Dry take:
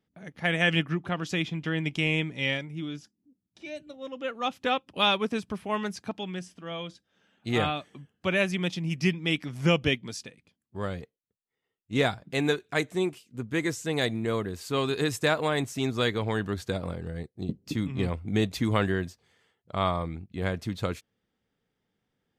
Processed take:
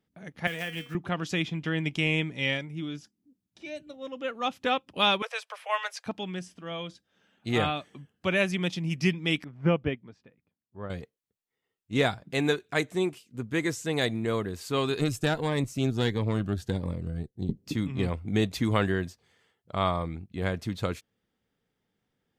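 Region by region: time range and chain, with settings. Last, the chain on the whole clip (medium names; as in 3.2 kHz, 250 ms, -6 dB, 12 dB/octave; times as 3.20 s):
0.47–0.95 s: block-companded coder 5-bit + feedback comb 240 Hz, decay 0.3 s, mix 80% + three bands compressed up and down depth 100%
5.22–6.06 s: steep high-pass 480 Hz 96 dB/octave + peaking EQ 2.2 kHz +5.5 dB 1.8 oct
9.44–10.90 s: low-pass 1.6 kHz + upward expansion, over -38 dBFS
14.99–17.57 s: bass shelf 300 Hz +7.5 dB + valve stage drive 12 dB, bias 0.65 + Shepard-style phaser rising 1.5 Hz
whole clip: none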